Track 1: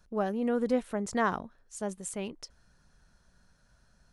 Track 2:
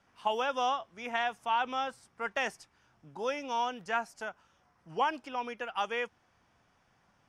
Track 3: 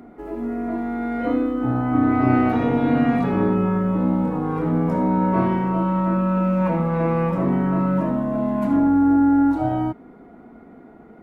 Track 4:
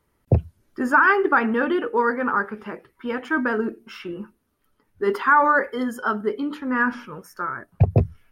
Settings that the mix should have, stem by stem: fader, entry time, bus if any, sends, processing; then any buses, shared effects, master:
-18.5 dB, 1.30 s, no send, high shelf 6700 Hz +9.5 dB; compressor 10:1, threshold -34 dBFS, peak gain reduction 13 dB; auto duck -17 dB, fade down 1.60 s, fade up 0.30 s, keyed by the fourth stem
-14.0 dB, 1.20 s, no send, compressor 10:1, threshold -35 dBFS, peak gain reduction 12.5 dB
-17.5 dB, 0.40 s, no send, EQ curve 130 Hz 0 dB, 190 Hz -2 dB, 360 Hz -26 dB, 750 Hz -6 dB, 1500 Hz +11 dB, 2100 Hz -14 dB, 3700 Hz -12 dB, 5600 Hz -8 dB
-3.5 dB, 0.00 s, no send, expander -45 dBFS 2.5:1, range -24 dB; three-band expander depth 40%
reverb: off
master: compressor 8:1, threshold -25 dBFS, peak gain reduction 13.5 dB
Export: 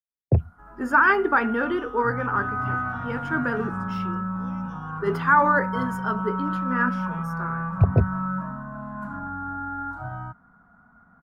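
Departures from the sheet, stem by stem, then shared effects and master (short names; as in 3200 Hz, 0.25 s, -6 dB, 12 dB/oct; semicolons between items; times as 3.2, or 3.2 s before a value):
stem 1: entry 1.30 s -> 1.70 s; stem 3 -17.5 dB -> -6.5 dB; master: missing compressor 8:1, threshold -25 dBFS, peak gain reduction 13.5 dB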